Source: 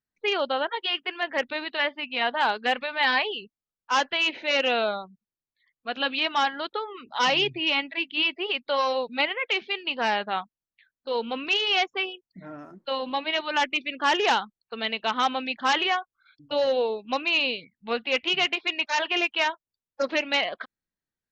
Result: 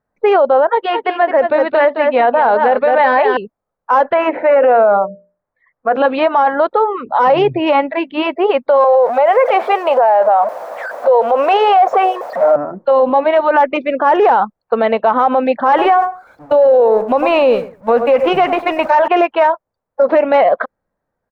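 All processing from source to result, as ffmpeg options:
-filter_complex "[0:a]asettb=1/sr,asplit=3[a][b][c];[a]atrim=end=0.704[d];[b]atrim=start=0.7:end=3.37,asetpts=PTS-STARTPTS,afade=t=in:d=0.004:c=qsin,afade=t=out:st=2.666:d=0.004:c=qsin,equalizer=f=940:w=1.3:g=-3.5,aecho=1:1:215:0.376,atrim=end_sample=117747[e];[c]atrim=start=3.366[f];[d][e]acrossfade=d=0.004:c1=hsin:c2=qsin[g];[g][f]acrossfade=d=0.004:c1=qsin:c2=hsin,asettb=1/sr,asplit=3[h][i][j];[h]atrim=end=4.144[k];[i]atrim=start=4.14:end=5.96,asetpts=PTS-STARTPTS,afade=t=in:d=0.004:c=qsin,afade=t=out:st=1.816:d=0.004:c=qsin,highshelf=f=2.8k:t=q:w=1.5:g=-12,bandreject=f=60:t=h:w=6,bandreject=f=120:t=h:w=6,bandreject=f=180:t=h:w=6,bandreject=f=240:t=h:w=6,bandreject=f=300:t=h:w=6,bandreject=f=360:t=h:w=6,bandreject=f=420:t=h:w=6,bandreject=f=480:t=h:w=6,bandreject=f=540:t=h:w=6,bandreject=f=600:t=h:w=6[l];[j]atrim=start=5.956[m];[k][l]acrossfade=d=0.004:c1=hsin:c2=qsin[n];[n][m]acrossfade=d=0.004:c1=qsin:c2=hsin,asettb=1/sr,asplit=3[o][p][q];[o]atrim=end=8.844[r];[p]atrim=start=8.84:end=12.56,asetpts=PTS-STARTPTS,afade=t=in:d=0.004:c=qsin,afade=t=out:st=3.716:d=0.004:c=qsin,aeval=exprs='val(0)+0.5*0.0188*sgn(val(0))':c=same,highpass=f=620:t=q:w=2.6[s];[q]atrim=start=12.556[t];[r][s]acrossfade=d=0.004:c1=hsin:c2=qsin[u];[u][t]acrossfade=d=0.004:c1=qsin:c2=hsin,asettb=1/sr,asplit=3[v][w][x];[v]atrim=end=15.684[y];[w]atrim=start=15.68:end=19.08,asetpts=PTS-STARTPTS,afade=t=in:d=0.004:c=qsin,afade=t=out:st=3.396:d=0.004:c=qsin,aeval=exprs='val(0)+0.5*0.015*sgn(val(0))':c=same,agate=range=-33dB:threshold=-32dB:ratio=3:release=100:detection=peak,asplit=2[z][aa];[aa]adelay=100,lowpass=f=1.4k:p=1,volume=-15dB,asplit=2[ab][ac];[ac]adelay=100,lowpass=f=1.4k:p=1,volume=0.17[ad];[z][ab][ad]amix=inputs=3:normalize=0,atrim=end_sample=149940[ae];[x]atrim=start=19.076[af];[y][ae]acrossfade=d=0.004:c1=hsin:c2=qsin[ag];[ag][af]acrossfade=d=0.004:c1=qsin:c2=hsin,acrossover=split=5200[ah][ai];[ai]acompressor=threshold=-49dB:ratio=4:attack=1:release=60[aj];[ah][aj]amix=inputs=2:normalize=0,firequalizer=gain_entry='entry(370,0);entry(520,11);entry(2900,-19)':delay=0.05:min_phase=1,alimiter=level_in=20dB:limit=-1dB:release=50:level=0:latency=1,volume=-3dB"

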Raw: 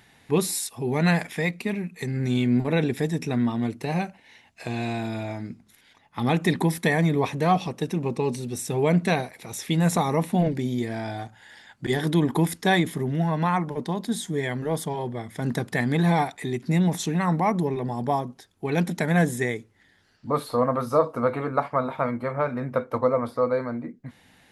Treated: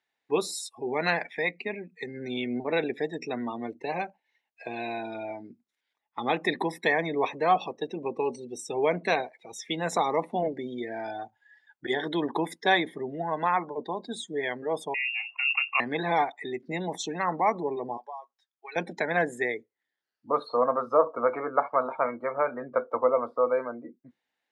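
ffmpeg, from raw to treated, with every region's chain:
-filter_complex "[0:a]asettb=1/sr,asplit=3[a][b][c];[a]atrim=end=14.944[d];[b]atrim=start=14.94:end=15.8,asetpts=PTS-STARTPTS,afade=t=in:d=0.004:c=qsin,afade=t=out:st=0.856:d=0.004:c=qsin,lowpass=f=2.5k:t=q:w=0.5098,lowpass=f=2.5k:t=q:w=0.6013,lowpass=f=2.5k:t=q:w=0.9,lowpass=f=2.5k:t=q:w=2.563,afreqshift=-2900,asplit=2[e][f];[f]adelay=31,volume=-12.5dB[g];[e][g]amix=inputs=2:normalize=0,atrim=end_sample=37926[h];[c]atrim=start=15.796[i];[d][h]acrossfade=d=0.004:c1=hsin:c2=qsin[j];[j][i]acrossfade=d=0.004:c1=qsin:c2=hsin,asettb=1/sr,asplit=3[k][l][m];[k]atrim=end=17.974[n];[l]atrim=start=17.97:end=18.76,asetpts=PTS-STARTPTS,afade=t=in:d=0.004:c=qsin,afade=t=out:st=0.786:d=0.004:c=qsin,highpass=1.1k,acompressor=threshold=-35dB:ratio=4:attack=3.2:release=140:knee=1:detection=peak[o];[m]atrim=start=18.756[p];[n][o]acrossfade=d=0.004:c1=hsin:c2=qsin[q];[q][p]acrossfade=d=0.004:c1=qsin:c2=hsin,afftdn=nr=25:nf=-37,acrossover=split=320 7900:gain=0.0708 1 0.0631[r][s][t];[r][s][t]amix=inputs=3:normalize=0"

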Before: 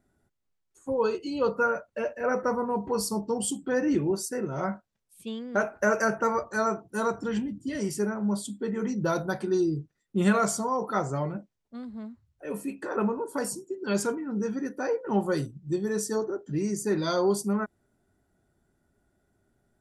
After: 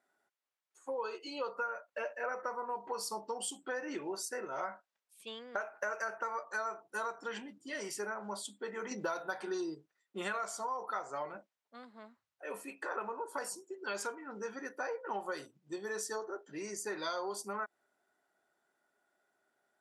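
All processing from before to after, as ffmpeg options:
-filter_complex "[0:a]asettb=1/sr,asplit=3[a][b][c];[a]atrim=end=8.914[d];[b]atrim=start=8.91:end=9.75,asetpts=PTS-STARTPTS,afade=t=in:d=0.004:c=qsin,afade=t=out:st=0.836:d=0.004:c=qsin,bandreject=f=154.4:t=h:w=4,bandreject=f=308.8:t=h:w=4,bandreject=f=463.2:t=h:w=4,bandreject=f=617.6:t=h:w=4,bandreject=f=772:t=h:w=4,bandreject=f=926.4:t=h:w=4,bandreject=f=1.0808k:t=h:w=4,bandreject=f=1.2352k:t=h:w=4,bandreject=f=1.3896k:t=h:w=4,bandreject=f=1.544k:t=h:w=4,bandreject=f=1.6984k:t=h:w=4,bandreject=f=1.8528k:t=h:w=4,bandreject=f=2.0072k:t=h:w=4,bandreject=f=2.1616k:t=h:w=4,bandreject=f=2.316k:t=h:w=4,bandreject=f=2.4704k:t=h:w=4,bandreject=f=2.6248k:t=h:w=4,bandreject=f=2.7792k:t=h:w=4,bandreject=f=2.9336k:t=h:w=4,bandreject=f=3.088k:t=h:w=4,bandreject=f=3.2424k:t=h:w=4,bandreject=f=3.3968k:t=h:w=4,bandreject=f=3.5512k:t=h:w=4,bandreject=f=3.7056k:t=h:w=4,bandreject=f=3.86k:t=h:w=4,acontrast=87[e];[c]atrim=start=9.746[f];[d][e]acrossfade=d=0.004:c1=hsin:c2=qsin[g];[g][f]acrossfade=d=0.004:c1=qsin:c2=hsin,highpass=760,aemphasis=mode=reproduction:type=cd,acompressor=threshold=-36dB:ratio=6,volume=1.5dB"

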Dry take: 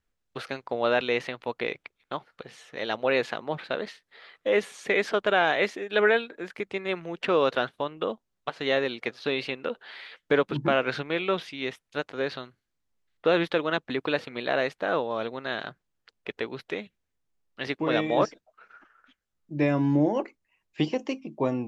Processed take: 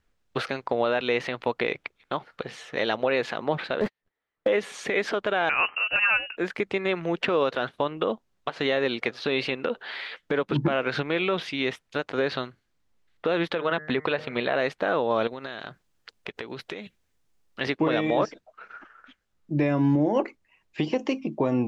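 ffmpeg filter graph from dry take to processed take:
-filter_complex "[0:a]asettb=1/sr,asplit=3[a][b][c];[a]atrim=end=3.804[d];[b]atrim=start=3.8:end=4.48,asetpts=PTS-STARTPTS,afade=t=in:d=0.004:c=qsin,afade=t=out:st=0.676:d=0.004:c=qsin,aeval=exprs='val(0)+0.5*0.0316*sgn(val(0))':c=same,lowpass=f=1.2k:p=1,agate=range=-54dB:threshold=-34dB:ratio=16:release=100:detection=peak[e];[c]atrim=start=4.476[f];[d][e]acrossfade=d=0.004:c1=hsin:c2=qsin[g];[g][f]acrossfade=d=0.004:c1=qsin:c2=hsin,asettb=1/sr,asplit=3[h][i][j];[h]atrim=end=5.494[k];[i]atrim=start=5.49:end=6.37,asetpts=PTS-STARTPTS,afade=t=in:d=0.004:c=qsin,afade=t=out:st=0.876:d=0.004:c=qsin,adynamicsmooth=sensitivity=7.5:basefreq=1.2k,lowpass=f=2.6k:t=q:w=0.5098,lowpass=f=2.6k:t=q:w=0.6013,lowpass=f=2.6k:t=q:w=0.9,lowpass=f=2.6k:t=q:w=2.563,afreqshift=-3100[l];[j]atrim=start=6.366[m];[k][l]acrossfade=d=0.004:c1=hsin:c2=qsin[n];[n][m]acrossfade=d=0.004:c1=qsin:c2=hsin,asettb=1/sr,asplit=3[o][p][q];[o]atrim=end=13.554[r];[p]atrim=start=13.55:end=14.56,asetpts=PTS-STARTPTS,afade=t=in:d=0.004:c=qsin,afade=t=out:st=1.006:d=0.004:c=qsin,acrossover=split=4000[s][t];[t]acompressor=threshold=-55dB:ratio=4:attack=1:release=60[u];[s][u]amix=inputs=2:normalize=0,equalizer=f=300:w=5.1:g=-8,bandreject=f=153:t=h:w=4,bandreject=f=306:t=h:w=4,bandreject=f=459:t=h:w=4,bandreject=f=612:t=h:w=4,bandreject=f=765:t=h:w=4,bandreject=f=918:t=h:w=4,bandreject=f=1.071k:t=h:w=4,bandreject=f=1.224k:t=h:w=4,bandreject=f=1.377k:t=h:w=4,bandreject=f=1.53k:t=h:w=4,bandreject=f=1.683k:t=h:w=4,bandreject=f=1.836k:t=h:w=4,bandreject=f=1.989k:t=h:w=4,bandreject=f=2.142k:t=h:w=4[v];[q]atrim=start=14.556[w];[r][v]acrossfade=d=0.004:c1=hsin:c2=qsin[x];[x][w]acrossfade=d=0.004:c1=qsin:c2=hsin,asettb=1/sr,asplit=3[y][z][aa];[y]atrim=end=15.274[ab];[z]atrim=start=15.27:end=17.61,asetpts=PTS-STARTPTS,afade=t=in:d=0.004:c=qsin,afade=t=out:st=2.336:d=0.004:c=qsin,highshelf=f=4.8k:g=8.5,acompressor=threshold=-39dB:ratio=16:attack=3.2:release=140:knee=1:detection=peak[ac];[aa]atrim=start=17.606[ad];[ab][ac]acrossfade=d=0.004:c1=hsin:c2=qsin[ae];[ae][ad]acrossfade=d=0.004:c1=qsin:c2=hsin,highshelf=f=7.7k:g=-9.5,acompressor=threshold=-26dB:ratio=6,alimiter=limit=-21.5dB:level=0:latency=1:release=100,volume=8.5dB"

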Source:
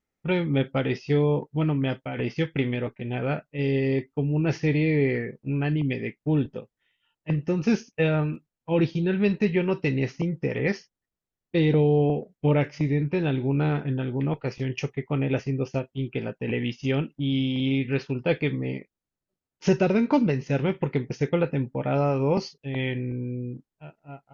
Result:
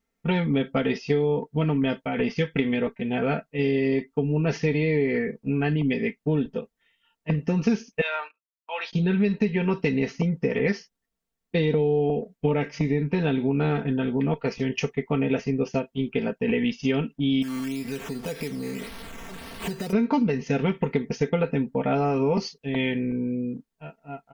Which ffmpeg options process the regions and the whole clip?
-filter_complex "[0:a]asettb=1/sr,asplit=3[a][b][c];[a]atrim=end=8.014[d];[b]atrim=start=8.01:end=8.93,asetpts=PTS-STARTPTS,afade=t=in:d=0.004:c=qsin,afade=t=out:st=0.916:d=0.004:c=qsin,highpass=f=820:w=0.5412,highpass=f=820:w=1.3066,agate=range=-26dB:threshold=-46dB:ratio=16:release=100:detection=peak[e];[c]atrim=start=8.926[f];[d][e]acrossfade=d=0.004:c1=hsin:c2=qsin[g];[g][f]acrossfade=d=0.004:c1=qsin:c2=hsin,asettb=1/sr,asplit=3[h][i][j];[h]atrim=end=17.424[k];[i]atrim=start=17.42:end=19.93,asetpts=PTS-STARTPTS,afade=t=in:d=0.004:c=qsin,afade=t=out:st=2.506:d=0.004:c=qsin,aeval=exprs='val(0)+0.5*0.015*sgn(val(0))':c=same,acompressor=threshold=-33dB:ratio=6:attack=3.2:release=140:knee=1:detection=peak,acrusher=samples=8:mix=1:aa=0.000001:lfo=1:lforange=4.8:lforate=1.8[l];[j]atrim=start=19.926[m];[k][l]acrossfade=d=0.004:c1=hsin:c2=qsin[n];[n][m]acrossfade=d=0.004:c1=qsin:c2=hsin,aecho=1:1:4.4:0.71,acompressor=threshold=-22dB:ratio=6,volume=3dB"

